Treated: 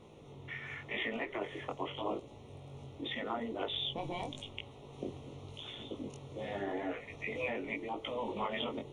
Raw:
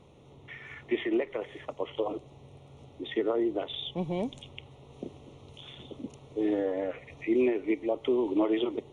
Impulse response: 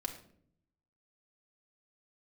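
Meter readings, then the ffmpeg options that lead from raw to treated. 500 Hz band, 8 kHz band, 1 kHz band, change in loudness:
−10.0 dB, can't be measured, +1.0 dB, −9.0 dB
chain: -af "afftfilt=real='re*lt(hypot(re,im),0.141)':imag='im*lt(hypot(re,im),0.141)':win_size=1024:overlap=0.75,bandreject=frequency=60:width_type=h:width=6,bandreject=frequency=120:width_type=h:width=6,bandreject=frequency=180:width_type=h:width=6,flanger=delay=18:depth=4.1:speed=0.86,volume=4.5dB"

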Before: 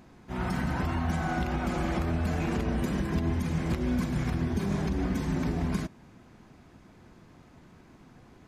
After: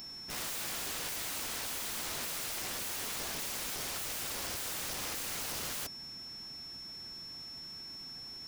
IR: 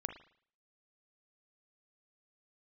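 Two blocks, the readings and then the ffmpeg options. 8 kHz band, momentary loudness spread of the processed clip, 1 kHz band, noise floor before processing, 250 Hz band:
+13.0 dB, 8 LU, −9.0 dB, −55 dBFS, −22.0 dB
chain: -af "crystalizer=i=8:c=0,aeval=exprs='val(0)+0.0126*sin(2*PI*5400*n/s)':channel_layout=same,aeval=exprs='(mod(25.1*val(0)+1,2)-1)/25.1':channel_layout=same,volume=-5.5dB"

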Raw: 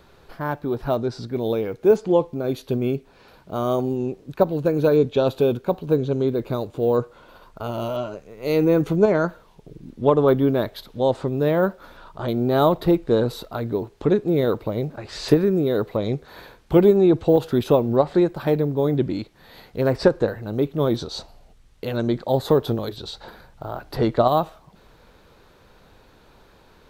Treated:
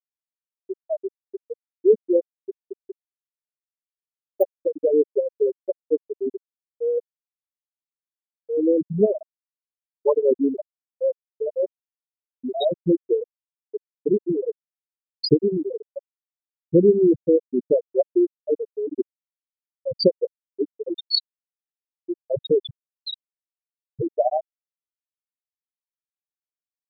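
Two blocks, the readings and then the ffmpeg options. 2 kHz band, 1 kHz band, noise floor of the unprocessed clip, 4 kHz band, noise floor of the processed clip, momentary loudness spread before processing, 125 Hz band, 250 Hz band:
below −40 dB, −10.5 dB, −53 dBFS, +3.0 dB, below −85 dBFS, 13 LU, −11.5 dB, −4.0 dB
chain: -af "aexciter=amount=6.6:drive=5.2:freq=2400,afftfilt=real='re*gte(hypot(re,im),0.891)':imag='im*gte(hypot(re,im),0.891)':win_size=1024:overlap=0.75"

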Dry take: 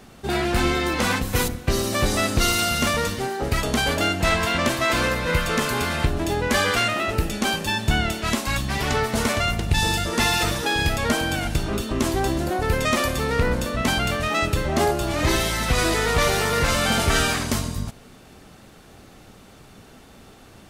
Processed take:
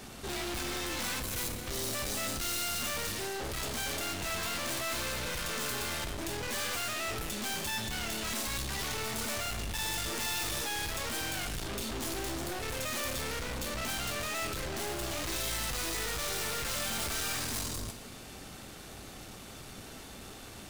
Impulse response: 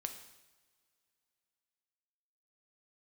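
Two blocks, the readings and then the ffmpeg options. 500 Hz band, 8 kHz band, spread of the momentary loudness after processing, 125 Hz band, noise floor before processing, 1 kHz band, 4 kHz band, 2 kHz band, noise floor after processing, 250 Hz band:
−15.0 dB, −6.0 dB, 14 LU, −17.0 dB, −48 dBFS, −14.5 dB, −9.5 dB, −13.0 dB, −47 dBFS, −16.0 dB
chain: -filter_complex "[0:a]aeval=exprs='(tanh(79.4*val(0)+0.4)-tanh(0.4))/79.4':channel_layout=same,asplit=2[link_01][link_02];[1:a]atrim=start_sample=2205,highshelf=frequency=2400:gain=10[link_03];[link_02][link_03]afir=irnorm=-1:irlink=0,volume=6dB[link_04];[link_01][link_04]amix=inputs=2:normalize=0,volume=-7.5dB"

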